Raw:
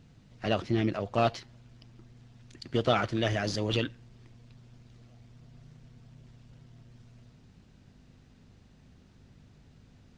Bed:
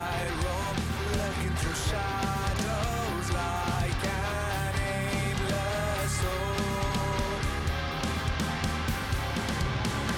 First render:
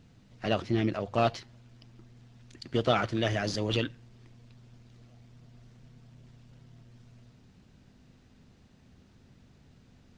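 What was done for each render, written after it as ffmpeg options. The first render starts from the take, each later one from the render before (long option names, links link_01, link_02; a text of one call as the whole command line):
ffmpeg -i in.wav -af "bandreject=frequency=50:width_type=h:width=4,bandreject=frequency=100:width_type=h:width=4,bandreject=frequency=150:width_type=h:width=4" out.wav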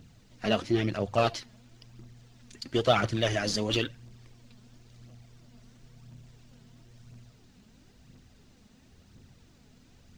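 ffmpeg -i in.wav -af "crystalizer=i=1.5:c=0,aphaser=in_gain=1:out_gain=1:delay=4.9:decay=0.45:speed=0.98:type=triangular" out.wav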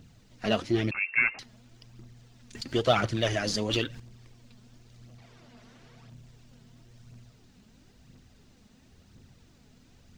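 ffmpeg -i in.wav -filter_complex "[0:a]asettb=1/sr,asplit=3[link_01][link_02][link_03];[link_01]atrim=end=0.914[link_04];[link_02]atrim=start=0.91:end=1.39,asetpts=PTS-STARTPTS,afade=type=in:duration=0.004:curve=qsin,afade=type=out:start_time=0.476:duration=0.004:curve=qsin,lowpass=frequency=2400:width_type=q:width=0.5098,lowpass=frequency=2400:width_type=q:width=0.6013,lowpass=frequency=2400:width_type=q:width=0.9,lowpass=frequency=2400:width_type=q:width=2.563,afreqshift=-2800[link_05];[link_03]atrim=start=1.386[link_06];[link_04][link_05]acrossfade=duration=0.004:curve1=hsin:curve2=qsin[link_07];[link_07][link_06]acrossfade=duration=0.004:curve1=qsin:curve2=hsin,asettb=1/sr,asplit=3[link_08][link_09][link_10];[link_08]atrim=end=2.554[link_11];[link_09]atrim=start=2.55:end=4,asetpts=PTS-STARTPTS,afade=type=in:duration=0.004:curve=qsin,afade=type=out:start_time=1.446:duration=0.004:curve=qsin,acompressor=mode=upward:threshold=-30dB:ratio=2.5:attack=3.2:release=140:knee=2.83:detection=peak[link_12];[link_10]atrim=start=3.996[link_13];[link_11][link_12]acrossfade=duration=0.004:curve1=hsin:curve2=qsin[link_14];[link_14][link_13]acrossfade=duration=0.004:curve1=qsin:curve2=hsin,asettb=1/sr,asplit=3[link_15][link_16][link_17];[link_15]atrim=end=5.184[link_18];[link_16]atrim=start=5.18:end=6.1,asetpts=PTS-STARTPTS,afade=type=in:duration=0.004:curve=qsin,afade=type=out:start_time=0.916:duration=0.004:curve=qsin,asplit=2[link_19][link_20];[link_20]highpass=frequency=720:poles=1,volume=19dB,asoftclip=type=tanh:threshold=-41dB[link_21];[link_19][link_21]amix=inputs=2:normalize=0,lowpass=frequency=1900:poles=1,volume=-6dB[link_22];[link_17]atrim=start=6.096[link_23];[link_18][link_22]acrossfade=duration=0.004:curve1=hsin:curve2=qsin[link_24];[link_24][link_23]acrossfade=duration=0.004:curve1=qsin:curve2=hsin" out.wav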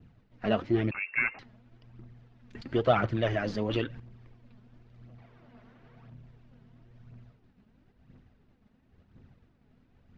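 ffmpeg -i in.wav -af "lowpass=2000,agate=range=-33dB:threshold=-52dB:ratio=3:detection=peak" out.wav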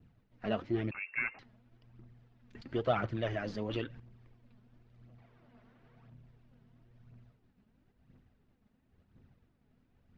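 ffmpeg -i in.wav -af "volume=-6.5dB" out.wav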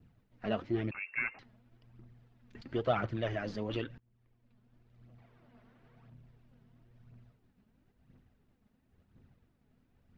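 ffmpeg -i in.wav -filter_complex "[0:a]asplit=2[link_01][link_02];[link_01]atrim=end=3.98,asetpts=PTS-STARTPTS,afade=type=out:start_time=3.976:duration=0.004:curve=hsin:silence=0.0749894[link_03];[link_02]atrim=start=3.98,asetpts=PTS-STARTPTS,afade=type=in:duration=1.19:silence=0.0749894[link_04];[link_03][link_04]concat=n=2:v=0:a=1" out.wav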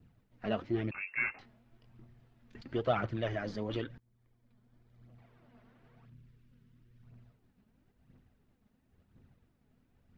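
ffmpeg -i in.wav -filter_complex "[0:a]asettb=1/sr,asplit=3[link_01][link_02][link_03];[link_01]atrim=end=0.924[link_04];[link_02]atrim=start=0.92:end=2.56,asetpts=PTS-STARTPTS,afade=type=in:duration=0.004:curve=qsin,afade=type=out:start_time=1.636:duration=0.004:curve=qsin,asplit=2[link_05][link_06];[link_06]adelay=22,volume=-5dB[link_07];[link_05][link_07]amix=inputs=2:normalize=0,atrim=end_sample=72324[link_08];[link_03]atrim=start=2.556[link_09];[link_04][link_08]acrossfade=duration=0.004:curve1=hsin:curve2=qsin[link_10];[link_10][link_09]acrossfade=duration=0.004:curve1=qsin:curve2=hsin,asettb=1/sr,asplit=3[link_11][link_12][link_13];[link_11]atrim=end=3.304[link_14];[link_12]atrim=start=3.3:end=5.1,asetpts=PTS-STARTPTS,afade=type=in:duration=0.004:curve=qsin,afade=type=out:start_time=1.796:duration=0.004:curve=qsin,bandreject=frequency=2700:width=10[link_15];[link_13]atrim=start=5.096[link_16];[link_14][link_15]acrossfade=duration=0.004:curve1=hsin:curve2=qsin[link_17];[link_17][link_16]acrossfade=duration=0.004:curve1=qsin:curve2=hsin,asettb=1/sr,asplit=3[link_18][link_19][link_20];[link_18]atrim=end=6.054[link_21];[link_19]atrim=start=6.05:end=7.03,asetpts=PTS-STARTPTS,afade=type=in:duration=0.004:curve=qsin,afade=type=out:start_time=0.976:duration=0.004:curve=qsin,equalizer=frequency=730:width_type=o:width=0.96:gain=-14.5[link_22];[link_20]atrim=start=7.026[link_23];[link_21][link_22]acrossfade=duration=0.004:curve1=hsin:curve2=qsin[link_24];[link_24][link_23]acrossfade=duration=0.004:curve1=qsin:curve2=hsin" out.wav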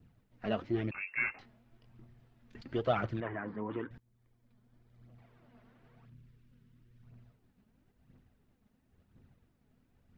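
ffmpeg -i in.wav -filter_complex "[0:a]asettb=1/sr,asplit=3[link_01][link_02][link_03];[link_01]atrim=end=3.204[link_04];[link_02]atrim=start=3.2:end=3.91,asetpts=PTS-STARTPTS,afade=type=in:duration=0.004:curve=qsin,afade=type=out:start_time=0.706:duration=0.004:curve=qsin,highpass=110,equalizer=frequency=120:width_type=q:width=4:gain=-6,equalizer=frequency=590:width_type=q:width=4:gain=-10,equalizer=frequency=1000:width_type=q:width=4:gain=9,lowpass=frequency=2000:width=0.5412,lowpass=frequency=2000:width=1.3066[link_05];[link_03]atrim=start=3.906[link_06];[link_04][link_05]acrossfade=duration=0.004:curve1=hsin:curve2=qsin[link_07];[link_07][link_06]acrossfade=duration=0.004:curve1=qsin:curve2=hsin" out.wav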